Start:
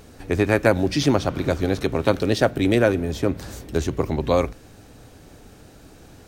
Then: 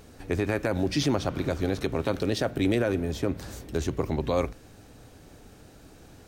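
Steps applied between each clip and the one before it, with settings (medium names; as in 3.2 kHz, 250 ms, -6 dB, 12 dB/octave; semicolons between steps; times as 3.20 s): peak limiter -10.5 dBFS, peak gain reduction 9 dB; trim -4 dB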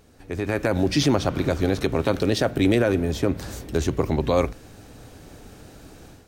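level rider gain up to 11 dB; trim -5 dB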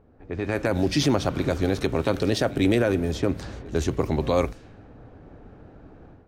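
level-controlled noise filter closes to 1.1 kHz, open at -18.5 dBFS; reverse echo 99 ms -21.5 dB; trim -1.5 dB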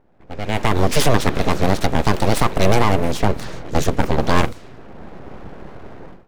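level rider gain up to 13 dB; full-wave rectifier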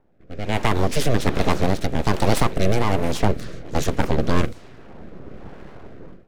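rotary cabinet horn 1.2 Hz; trim -1 dB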